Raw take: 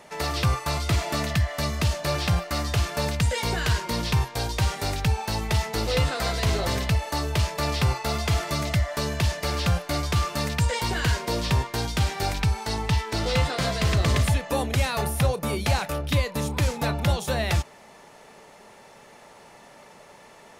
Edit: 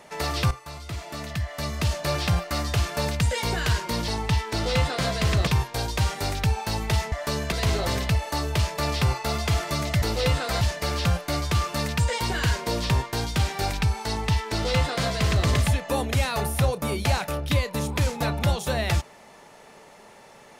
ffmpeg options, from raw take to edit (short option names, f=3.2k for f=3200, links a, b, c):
-filter_complex "[0:a]asplit=8[a][b][c][d][e][f][g][h];[a]atrim=end=0.51,asetpts=PTS-STARTPTS,afade=t=out:st=0.506:d=0.004:c=hsin:silence=0.237137[i];[b]atrim=start=0.51:end=4.082,asetpts=PTS-STARTPTS,afade=t=in:d=1.46:c=qua:silence=0.237137[j];[c]atrim=start=12.678:end=14.072[k];[d]atrim=start=4.078:end=5.732[l];[e]atrim=start=8.818:end=9.222[m];[f]atrim=start=6.318:end=8.822[n];[g]atrim=start=5.728:end=6.322[o];[h]atrim=start=9.218[p];[i][j]concat=n=2:v=0:a=1[q];[q][k]acrossfade=d=0.004:c1=hsin:c2=hsin[r];[r][l]acrossfade=d=0.004:c1=hsin:c2=hsin[s];[s][m]acrossfade=d=0.004:c1=hsin:c2=hsin[t];[t][n]acrossfade=d=0.004:c1=hsin:c2=hsin[u];[u][o]acrossfade=d=0.004:c1=hsin:c2=hsin[v];[v][p]acrossfade=d=0.004:c1=hsin:c2=hsin"